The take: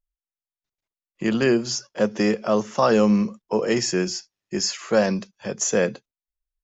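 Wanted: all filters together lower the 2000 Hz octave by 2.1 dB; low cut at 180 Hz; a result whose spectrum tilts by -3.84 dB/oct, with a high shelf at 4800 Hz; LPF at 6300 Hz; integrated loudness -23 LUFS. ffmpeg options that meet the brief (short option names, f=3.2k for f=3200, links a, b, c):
-af "highpass=180,lowpass=6.3k,equalizer=f=2k:t=o:g=-3.5,highshelf=f=4.8k:g=5"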